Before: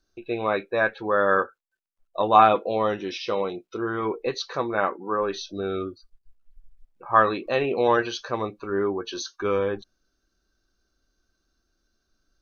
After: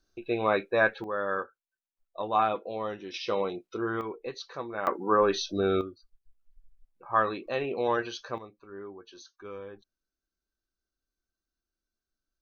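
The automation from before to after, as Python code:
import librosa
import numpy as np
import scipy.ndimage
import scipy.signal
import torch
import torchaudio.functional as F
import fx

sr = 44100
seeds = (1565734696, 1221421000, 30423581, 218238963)

y = fx.gain(x, sr, db=fx.steps((0.0, -1.0), (1.04, -10.0), (3.14, -3.0), (4.01, -10.0), (4.87, 2.5), (5.81, -7.0), (8.38, -17.5)))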